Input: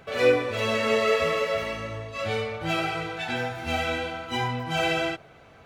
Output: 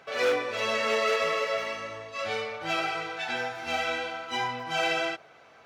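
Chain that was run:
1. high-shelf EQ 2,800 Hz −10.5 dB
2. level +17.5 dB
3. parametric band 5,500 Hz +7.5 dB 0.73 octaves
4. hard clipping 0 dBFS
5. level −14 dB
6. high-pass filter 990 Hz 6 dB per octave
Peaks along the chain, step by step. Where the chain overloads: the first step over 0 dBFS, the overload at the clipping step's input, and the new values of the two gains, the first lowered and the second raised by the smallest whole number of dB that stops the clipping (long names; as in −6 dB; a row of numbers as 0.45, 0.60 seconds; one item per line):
−9.5, +8.0, +8.0, 0.0, −14.0, −13.0 dBFS
step 2, 8.0 dB
step 2 +9.5 dB, step 5 −6 dB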